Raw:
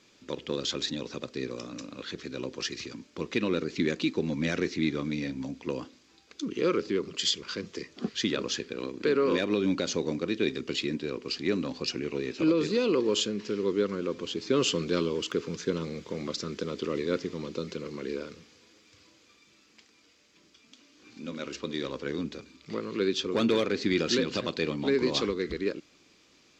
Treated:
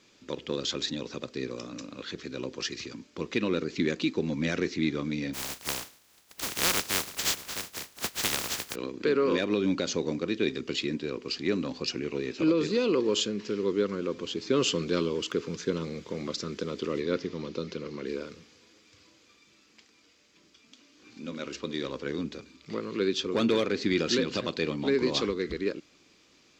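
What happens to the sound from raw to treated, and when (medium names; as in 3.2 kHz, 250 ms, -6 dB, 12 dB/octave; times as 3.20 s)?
5.33–8.74 s: spectral contrast reduction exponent 0.14
17.00–18.06 s: low-pass 6.4 kHz 24 dB/octave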